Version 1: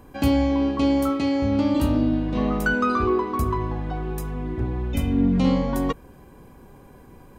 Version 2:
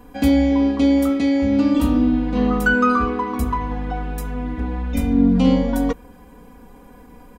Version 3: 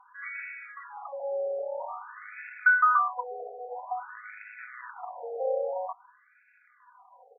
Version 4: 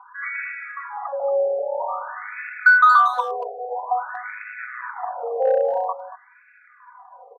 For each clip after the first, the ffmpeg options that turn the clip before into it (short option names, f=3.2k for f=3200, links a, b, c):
-af "aecho=1:1:4.1:0.98"
-af "lowshelf=f=180:t=q:w=1.5:g=12,acrusher=bits=6:mode=log:mix=0:aa=0.000001,afftfilt=real='re*between(b*sr/1024,550*pow(1900/550,0.5+0.5*sin(2*PI*0.5*pts/sr))/1.41,550*pow(1900/550,0.5+0.5*sin(2*PI*0.5*pts/sr))*1.41)':imag='im*between(b*sr/1024,550*pow(1900/550,0.5+0.5*sin(2*PI*0.5*pts/sr))/1.41,550*pow(1900/550,0.5+0.5*sin(2*PI*0.5*pts/sr))*1.41)':win_size=1024:overlap=0.75,volume=-2dB"
-filter_complex "[0:a]asplit=2[a][b];[b]aeval=exprs='0.0668*(abs(mod(val(0)/0.0668+3,4)-2)-1)':c=same,volume=-9dB[c];[a][c]amix=inputs=2:normalize=0,highpass=380,lowpass=2.3k,asplit=2[d][e];[e]adelay=230,highpass=300,lowpass=3.4k,asoftclip=type=hard:threshold=-22dB,volume=-14dB[f];[d][f]amix=inputs=2:normalize=0,volume=8.5dB"